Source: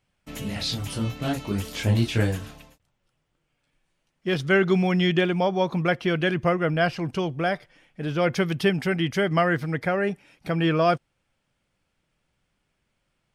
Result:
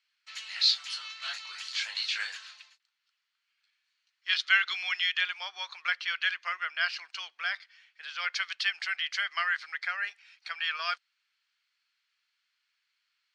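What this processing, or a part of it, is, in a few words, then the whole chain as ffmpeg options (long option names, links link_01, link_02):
headphones lying on a table: -filter_complex "[0:a]highpass=frequency=1400:width=0.5412,highpass=frequency=1400:width=1.3066,lowpass=frequency=6500:width=0.5412,lowpass=frequency=6500:width=1.3066,equalizer=frequency=4300:width_type=o:width=0.24:gain=10,asettb=1/sr,asplit=3[link_01][link_02][link_03];[link_01]atrim=end=4.294[link_04];[link_02]atrim=start=4.29:end=5,asetpts=PTS-STARTPTS,afade=type=in:duration=0.004:curve=qsin,afade=type=out:start_time=0.706:duration=0.004:curve=qsin,equalizer=frequency=3300:width_type=o:width=1.3:gain=5.5[link_05];[link_03]atrim=start=4.996[link_06];[link_04][link_05]acrossfade=duration=0.004:curve1=hsin:curve2=qsin[link_07];[link_07][link_06]acrossfade=duration=0.004:curve1=qsin:curve2=hsin"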